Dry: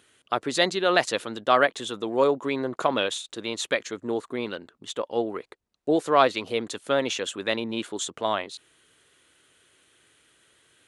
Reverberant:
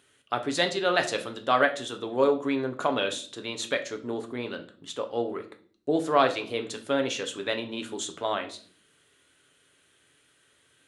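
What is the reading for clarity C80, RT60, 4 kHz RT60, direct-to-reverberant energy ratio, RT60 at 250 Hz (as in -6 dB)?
18.5 dB, 0.50 s, 0.40 s, 5.0 dB, 0.75 s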